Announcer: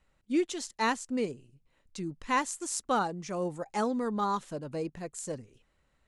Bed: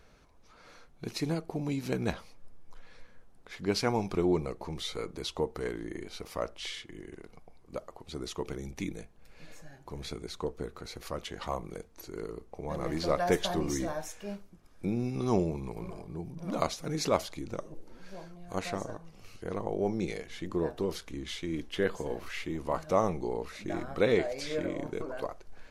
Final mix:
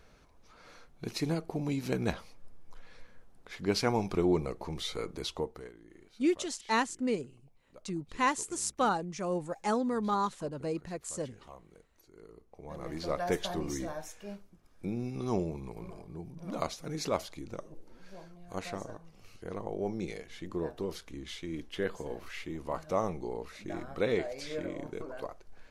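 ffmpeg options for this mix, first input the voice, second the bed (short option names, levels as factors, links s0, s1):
-filter_complex "[0:a]adelay=5900,volume=1[s0];[1:a]volume=4.22,afade=t=out:st=5.24:d=0.47:silence=0.149624,afade=t=in:st=12.14:d=1.11:silence=0.237137[s1];[s0][s1]amix=inputs=2:normalize=0"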